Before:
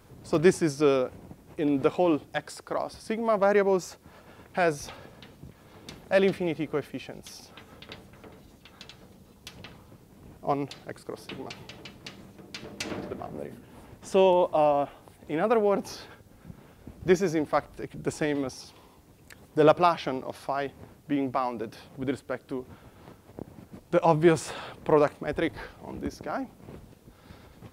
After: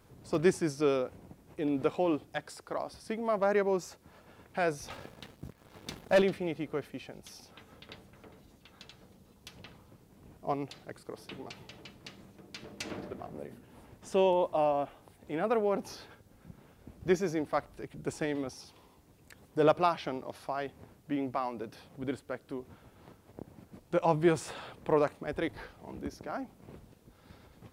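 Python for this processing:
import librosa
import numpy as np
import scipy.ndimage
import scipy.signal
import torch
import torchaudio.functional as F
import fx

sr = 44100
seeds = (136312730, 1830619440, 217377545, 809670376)

y = fx.leveller(x, sr, passes=2, at=(4.9, 6.22))
y = y * 10.0 ** (-5.5 / 20.0)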